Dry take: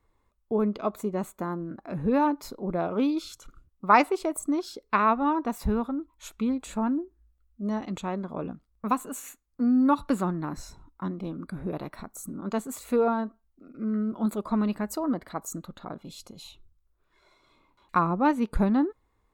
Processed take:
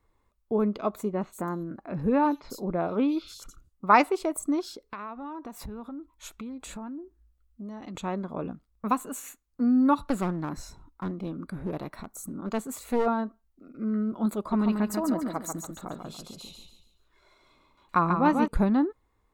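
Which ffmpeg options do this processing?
-filter_complex "[0:a]asettb=1/sr,asplit=3[s0][s1][s2];[s0]atrim=end=1.124[s3];[s1]atrim=start=1.12:end=3.87,asetpts=PTS-STARTPTS,afade=t=in:d=0.004:c=qsin,afade=t=out:st=2.746:d=0.004:c=qsin,acrossover=split=3800[s4][s5];[s5]adelay=90[s6];[s4][s6]amix=inputs=2:normalize=0,atrim=end_sample=121275[s7];[s2]atrim=start=3.866[s8];[s3][s7]acrossfade=d=0.004:c1=hsin:c2=qsin[s9];[s9][s8]acrossfade=d=0.004:c1=qsin:c2=hsin,asettb=1/sr,asplit=3[s10][s11][s12];[s10]atrim=end=4.644[s13];[s11]atrim=start=4.64:end=7.95,asetpts=PTS-STARTPTS,afade=t=in:d=0.004:c=qsin,afade=t=out:st=3.306:d=0.004:c=qsin,acompressor=threshold=0.0158:ratio=6:attack=3.2:release=140:knee=1:detection=peak[s14];[s12]atrim=start=7.946[s15];[s13][s14]acrossfade=d=0.004:c1=hsin:c2=qsin[s16];[s16][s15]acrossfade=d=0.004:c1=qsin:c2=hsin,asplit=3[s17][s18][s19];[s17]afade=t=out:st=10.07:d=0.02[s20];[s18]aeval=exprs='clip(val(0),-1,0.0282)':c=same,afade=t=in:st=10.07:d=0.02,afade=t=out:st=13.05:d=0.02[s21];[s19]afade=t=in:st=13.05:d=0.02[s22];[s20][s21][s22]amix=inputs=3:normalize=0,asettb=1/sr,asplit=3[s23][s24][s25];[s23]atrim=end=14.384[s26];[s24]atrim=start=14.38:end=18.48,asetpts=PTS-STARTPTS,afade=t=in:d=0.004:c=qsin,afade=t=out:st=4.096:d=0.004:c=qsin,aecho=1:1:142|284|426|568:0.562|0.197|0.0689|0.0241,atrim=end_sample=180810[s27];[s25]atrim=start=18.476[s28];[s26][s27]acrossfade=d=0.004:c1=hsin:c2=qsin[s29];[s29][s28]acrossfade=d=0.004:c1=qsin:c2=hsin"

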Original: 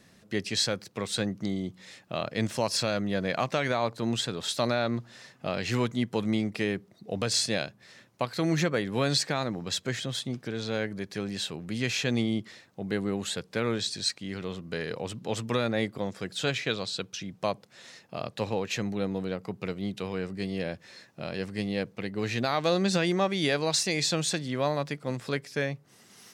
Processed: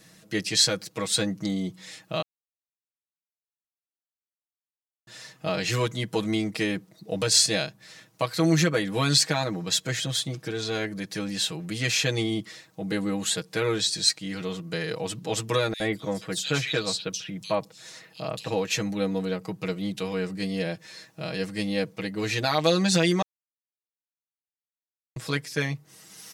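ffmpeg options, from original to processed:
-filter_complex "[0:a]asettb=1/sr,asplit=3[s0][s1][s2];[s0]atrim=end=15.734[s3];[s1]atrim=start=15.73:end=18.48,asetpts=PTS-STARTPTS,afade=t=in:d=0.004:c=qsin,afade=t=out:st=2.746:d=0.004:c=qsin,acrossover=split=3100[s4][s5];[s4]adelay=70[s6];[s6][s5]amix=inputs=2:normalize=0,atrim=end_sample=121275[s7];[s2]atrim=start=18.476[s8];[s3][s7]acrossfade=d=0.004:c1=hsin:c2=qsin[s9];[s9][s8]acrossfade=d=0.004:c1=qsin:c2=hsin,asplit=5[s10][s11][s12][s13][s14];[s10]atrim=end=2.22,asetpts=PTS-STARTPTS,afade=t=out:st=2.216:d=0.004:c=hsin[s15];[s11]atrim=start=2.22:end=5.07,asetpts=PTS-STARTPTS,volume=0[s16];[s12]atrim=start=5.07:end=23.22,asetpts=PTS-STARTPTS,afade=t=in:d=0.004:c=hsin,afade=t=out:st=18.146:d=0.004:c=hsin[s17];[s13]atrim=start=23.22:end=25.16,asetpts=PTS-STARTPTS,volume=0[s18];[s14]atrim=start=25.16,asetpts=PTS-STARTPTS,afade=t=in:d=0.004:c=hsin[s19];[s15][s16][s17][s18][s19]concat=n=5:v=0:a=1,highshelf=f=4800:g=8.5,aecho=1:1:6.3:0.9"

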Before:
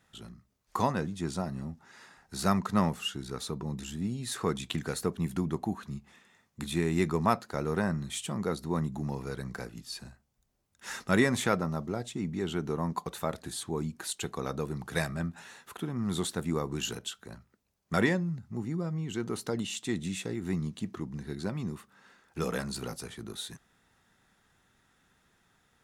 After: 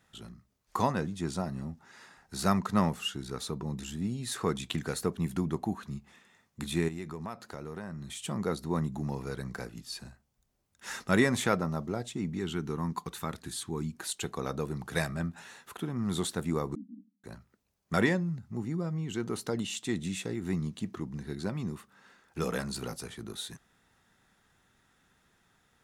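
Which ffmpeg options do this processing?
-filter_complex "[0:a]asettb=1/sr,asplit=3[s0][s1][s2];[s0]atrim=end=6.884[s3];[s1]atrim=start=6.88:end=8.23,asetpts=PTS-STARTPTS,afade=t=in:d=0.004:c=qsin,afade=t=out:st=1.346:d=0.004:c=qsin,acompressor=threshold=0.0112:ratio=3:attack=3.2:release=140:knee=1:detection=peak[s4];[s2]atrim=start=8.226[s5];[s3][s4]acrossfade=d=0.004:c1=hsin:c2=qsin[s6];[s6][s5]acrossfade=d=0.004:c1=qsin:c2=hsin,asettb=1/sr,asplit=3[s7][s8][s9];[s7]atrim=end=12.374[s10];[s8]atrim=start=12.37:end=13.94,asetpts=PTS-STARTPTS,afade=t=in:d=0.004:c=qsin,afade=t=out:st=1.566:d=0.004:c=qsin,equalizer=f=600:t=o:w=0.7:g=-11.5[s11];[s9]atrim=start=13.936[s12];[s10][s11]acrossfade=d=0.004:c1=hsin:c2=qsin[s13];[s13][s12]acrossfade=d=0.004:c1=qsin:c2=hsin,asettb=1/sr,asplit=3[s14][s15][s16];[s14]atrim=end=16.754[s17];[s15]atrim=start=16.75:end=17.24,asetpts=PTS-STARTPTS,afade=t=in:d=0.004:c=qsin,afade=t=out:st=0.486:d=0.004:c=qsin,asuperpass=centerf=240:order=12:qfactor=2.4[s18];[s16]atrim=start=17.236[s19];[s17][s18]acrossfade=d=0.004:c1=hsin:c2=qsin[s20];[s20][s19]acrossfade=d=0.004:c1=qsin:c2=hsin"

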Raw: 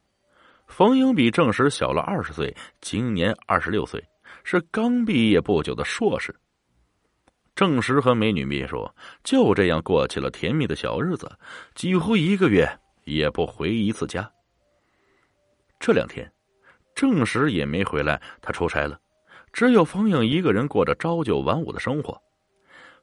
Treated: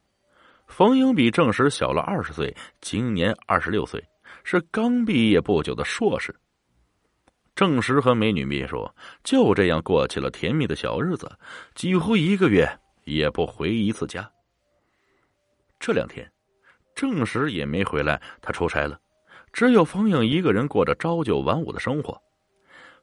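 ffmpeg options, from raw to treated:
-filter_complex "[0:a]asettb=1/sr,asplit=3[s0][s1][s2];[s0]atrim=end=13.984[s3];[s1]atrim=start=13.98:end=17.77,asetpts=PTS-STARTPTS,afade=t=in:d=0.004:c=qsin,afade=t=out:st=3.786:d=0.004:c=qsin,acrossover=split=1300[s4][s5];[s4]aeval=exprs='val(0)*(1-0.5/2+0.5/2*cos(2*PI*2.4*n/s))':c=same[s6];[s5]aeval=exprs='val(0)*(1-0.5/2-0.5/2*cos(2*PI*2.4*n/s))':c=same[s7];[s6][s7]amix=inputs=2:normalize=0[s8];[s2]atrim=start=17.766[s9];[s3][s8]acrossfade=d=0.004:c1=hsin:c2=qsin[s10];[s10][s9]acrossfade=d=0.004:c1=qsin:c2=hsin"

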